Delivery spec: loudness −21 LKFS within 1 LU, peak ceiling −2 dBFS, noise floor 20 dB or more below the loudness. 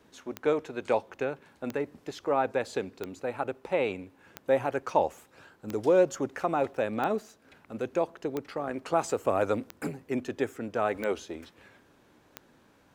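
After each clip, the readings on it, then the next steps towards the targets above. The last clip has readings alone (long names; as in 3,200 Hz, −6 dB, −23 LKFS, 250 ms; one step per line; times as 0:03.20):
number of clicks 10; integrated loudness −30.5 LKFS; sample peak −10.5 dBFS; target loudness −21.0 LKFS
→ click removal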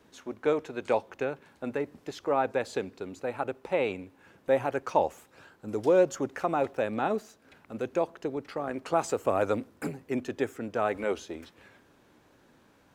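number of clicks 0; integrated loudness −30.5 LKFS; sample peak −10.5 dBFS; target loudness −21.0 LKFS
→ level +9.5 dB
brickwall limiter −2 dBFS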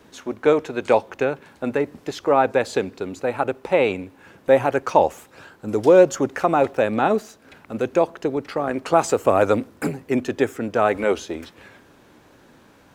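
integrated loudness −21.0 LKFS; sample peak −2.0 dBFS; background noise floor −53 dBFS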